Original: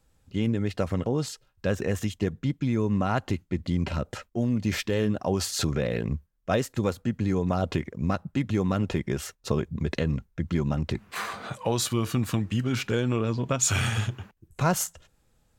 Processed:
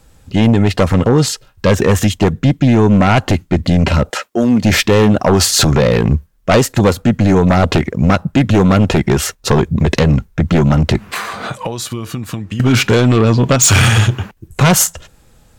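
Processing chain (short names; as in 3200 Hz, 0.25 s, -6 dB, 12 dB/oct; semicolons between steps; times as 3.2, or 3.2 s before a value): 4.09–4.62 HPF 640 Hz -> 160 Hz 12 dB/oct; 10.96–12.6 compressor 10:1, threshold -38 dBFS, peak gain reduction 17.5 dB; sine folder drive 9 dB, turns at -10.5 dBFS; gain +5.5 dB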